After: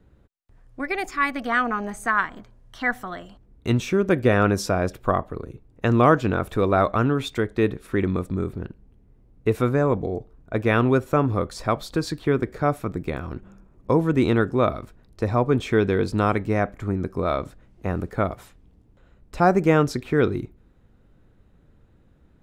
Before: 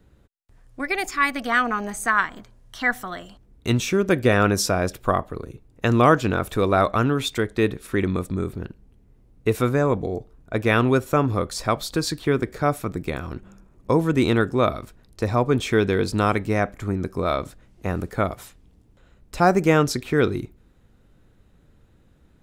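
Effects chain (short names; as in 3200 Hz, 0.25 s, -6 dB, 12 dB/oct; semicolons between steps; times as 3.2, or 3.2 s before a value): high shelf 3100 Hz -9.5 dB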